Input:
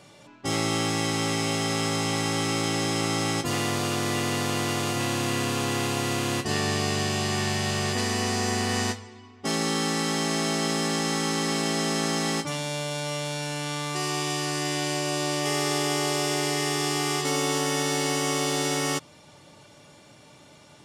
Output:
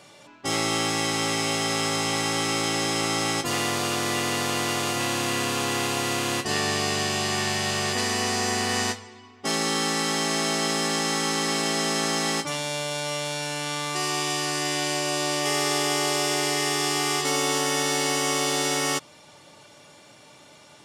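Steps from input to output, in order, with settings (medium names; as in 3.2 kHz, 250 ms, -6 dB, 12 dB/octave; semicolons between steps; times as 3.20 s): bass shelf 270 Hz -9 dB; trim +3 dB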